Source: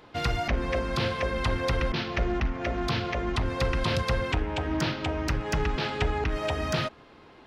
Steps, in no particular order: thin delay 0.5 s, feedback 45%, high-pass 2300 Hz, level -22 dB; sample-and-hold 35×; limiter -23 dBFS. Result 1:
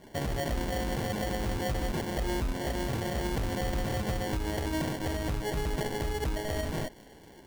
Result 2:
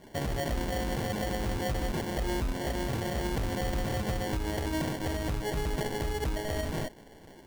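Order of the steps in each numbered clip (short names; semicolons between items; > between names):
limiter > sample-and-hold > thin delay; thin delay > limiter > sample-and-hold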